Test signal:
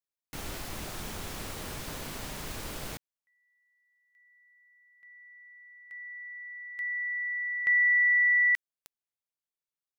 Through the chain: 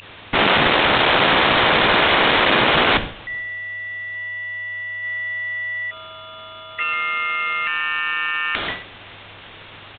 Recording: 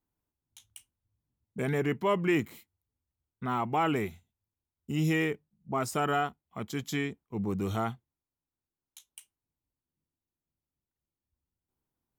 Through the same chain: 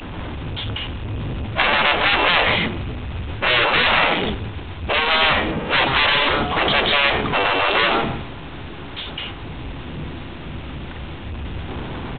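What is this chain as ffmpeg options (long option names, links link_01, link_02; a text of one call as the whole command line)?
ffmpeg -i in.wav -filter_complex "[0:a]aeval=exprs='val(0)+0.5*0.0224*sgn(val(0))':channel_layout=same,asplit=2[link_01][link_02];[link_02]adelay=137,lowpass=frequency=1300:poles=1,volume=-12dB,asplit=2[link_03][link_04];[link_04]adelay=137,lowpass=frequency=1300:poles=1,volume=0.46,asplit=2[link_05][link_06];[link_06]adelay=137,lowpass=frequency=1300:poles=1,volume=0.46,asplit=2[link_07][link_08];[link_08]adelay=137,lowpass=frequency=1300:poles=1,volume=0.46,asplit=2[link_09][link_10];[link_10]adelay=137,lowpass=frequency=1300:poles=1,volume=0.46[link_11];[link_01][link_03][link_05][link_07][link_09][link_11]amix=inputs=6:normalize=0,agate=range=-33dB:threshold=-31dB:ratio=3:release=378:detection=peak,apsyclip=21.5dB,aeval=exprs='val(0)+0.112*sin(2*PI*2700*n/s)':channel_layout=same,aresample=8000,asoftclip=type=tanh:threshold=-12dB,aresample=44100,afftfilt=real='re*lt(hypot(re,im),0.398)':imag='im*lt(hypot(re,im),0.398)':win_size=1024:overlap=0.75,volume=6dB" out.wav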